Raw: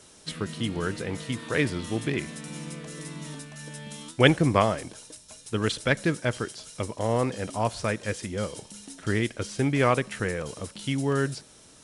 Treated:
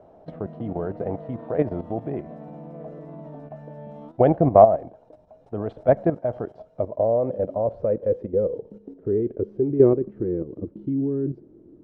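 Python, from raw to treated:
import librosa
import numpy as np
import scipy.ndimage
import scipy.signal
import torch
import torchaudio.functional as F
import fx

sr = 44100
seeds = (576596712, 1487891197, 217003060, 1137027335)

y = fx.level_steps(x, sr, step_db=11)
y = fx.filter_sweep_lowpass(y, sr, from_hz=690.0, to_hz=340.0, start_s=6.46, end_s=10.35, q=6.4)
y = y * 10.0 ** (3.5 / 20.0)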